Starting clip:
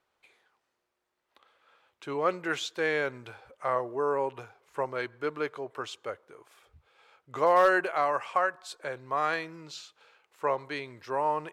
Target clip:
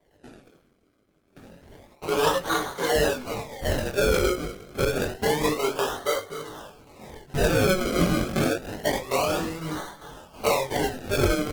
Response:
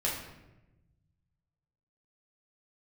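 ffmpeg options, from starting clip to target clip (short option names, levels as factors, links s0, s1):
-filter_complex "[0:a]asplit=2[s0][s1];[s1]acompressor=threshold=0.0158:ratio=6,volume=0.891[s2];[s0][s2]amix=inputs=2:normalize=0,adynamicequalizer=threshold=0.00224:dfrequency=110:dqfactor=1.2:tfrequency=110:tqfactor=1.2:attack=5:release=100:ratio=0.375:range=1.5:mode=cutabove:tftype=bell,acrossover=split=190|2100[s3][s4][s5];[s3]acompressor=threshold=0.00141:ratio=4[s6];[s4]acompressor=threshold=0.0251:ratio=4[s7];[s5]acompressor=threshold=0.00398:ratio=4[s8];[s6][s7][s8]amix=inputs=3:normalize=0,bandreject=f=383.6:t=h:w=4,bandreject=f=767.2:t=h:w=4,bandreject=f=1150.8:t=h:w=4,bandreject=f=1534.4:t=h:w=4,bandreject=f=1918:t=h:w=4,bandreject=f=2301.6:t=h:w=4,bandreject=f=2685.2:t=h:w=4,bandreject=f=3068.8:t=h:w=4,bandreject=f=3452.4:t=h:w=4,bandreject=f=3836:t=h:w=4,bandreject=f=4219.6:t=h:w=4,bandreject=f=4603.2:t=h:w=4,bandreject=f=4986.8:t=h:w=4,bandreject=f=5370.4:t=h:w=4,bandreject=f=5754:t=h:w=4,bandreject=f=6137.6:t=h:w=4,bandreject=f=6521.2:t=h:w=4,bandreject=f=6904.8:t=h:w=4,bandreject=f=7288.4:t=h:w=4,bandreject=f=7672:t=h:w=4,bandreject=f=8055.6:t=h:w=4,bandreject=f=8439.2:t=h:w=4,bandreject=f=8822.8:t=h:w=4,bandreject=f=9206.4:t=h:w=4,acrossover=split=140[s9][s10];[s9]aeval=exprs='(mod(794*val(0)+1,2)-1)/794':c=same[s11];[s11][s10]amix=inputs=2:normalize=0,aemphasis=mode=production:type=cd,aecho=1:1:7:0.75,asplit=2[s12][s13];[s13]adelay=478.1,volume=0.0398,highshelf=f=4000:g=-10.8[s14];[s12][s14]amix=inputs=2:normalize=0[s15];[1:a]atrim=start_sample=2205,atrim=end_sample=4410[s16];[s15][s16]afir=irnorm=-1:irlink=0,acrusher=samples=33:mix=1:aa=0.000001:lfo=1:lforange=33:lforate=0.28,flanger=delay=19:depth=4:speed=0.92,volume=2" -ar 48000 -c:a libopus -b:a 16k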